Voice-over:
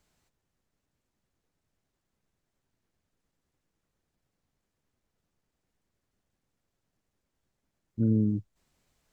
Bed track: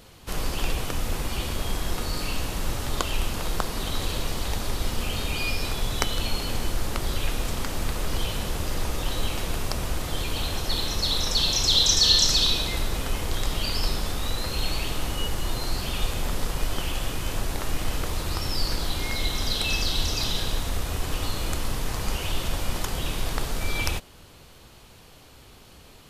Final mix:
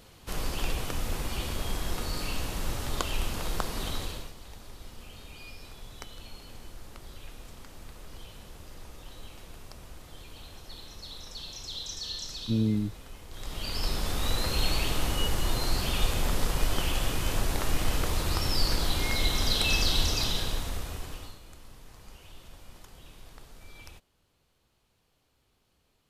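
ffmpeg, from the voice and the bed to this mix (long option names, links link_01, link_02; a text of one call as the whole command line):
ffmpeg -i stem1.wav -i stem2.wav -filter_complex "[0:a]adelay=4500,volume=-1.5dB[link_01];[1:a]volume=14.5dB,afade=type=out:start_time=3.88:duration=0.45:silence=0.188365,afade=type=in:start_time=13.3:duration=1.02:silence=0.11885,afade=type=out:start_time=19.94:duration=1.46:silence=0.0794328[link_02];[link_01][link_02]amix=inputs=2:normalize=0" out.wav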